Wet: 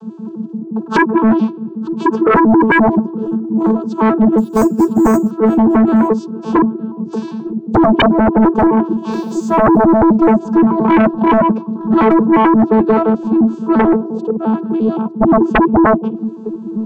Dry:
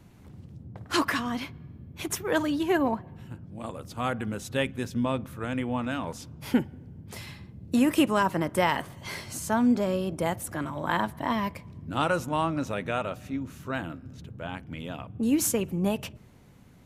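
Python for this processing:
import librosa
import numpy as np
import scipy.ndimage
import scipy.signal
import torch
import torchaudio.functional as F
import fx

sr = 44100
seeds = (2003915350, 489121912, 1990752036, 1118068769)

p1 = fx.vocoder_arp(x, sr, chord='bare fifth', root=57, every_ms=87)
p2 = scipy.signal.sosfilt(scipy.signal.butter(2, 190.0, 'highpass', fs=sr, output='sos'), p1)
p3 = fx.env_lowpass_down(p2, sr, base_hz=470.0, full_db=-22.5)
p4 = fx.resample_bad(p3, sr, factor=6, down='filtered', up='hold', at=(4.38, 5.31))
p5 = fx.band_shelf(p4, sr, hz=660.0, db=14.0, octaves=1.7, at=(13.79, 14.37))
p6 = np.clip(10.0 ** (27.0 / 20.0) * p5, -1.0, 1.0) / 10.0 ** (27.0 / 20.0)
p7 = p5 + F.gain(torch.from_numpy(p6), -4.5).numpy()
p8 = fx.tilt_shelf(p7, sr, db=8.0, hz=970.0)
p9 = fx.fixed_phaser(p8, sr, hz=410.0, stages=8)
p10 = p9 + 10.0 ** (-23.0 / 20.0) * np.pad(p9, (int(909 * sr / 1000.0), 0))[:len(p9)]
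p11 = fx.quant_dither(p10, sr, seeds[0], bits=12, dither='none', at=(9.12, 9.83))
y = fx.fold_sine(p11, sr, drive_db=17, ceiling_db=-6.0)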